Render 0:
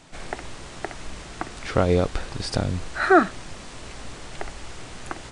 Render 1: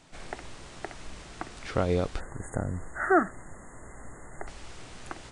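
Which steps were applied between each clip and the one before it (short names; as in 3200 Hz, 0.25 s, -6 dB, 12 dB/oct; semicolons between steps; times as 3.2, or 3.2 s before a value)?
spectral delete 2.2–4.47, 2100–6500 Hz; gain -6.5 dB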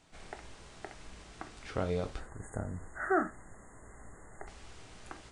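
non-linear reverb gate 0.11 s falling, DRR 7 dB; gain -7.5 dB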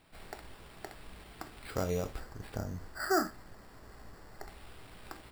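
sample-and-hold 7×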